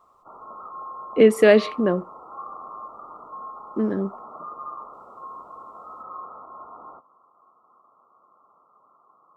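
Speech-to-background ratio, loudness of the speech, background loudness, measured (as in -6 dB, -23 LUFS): 19.5 dB, -19.5 LUFS, -39.0 LUFS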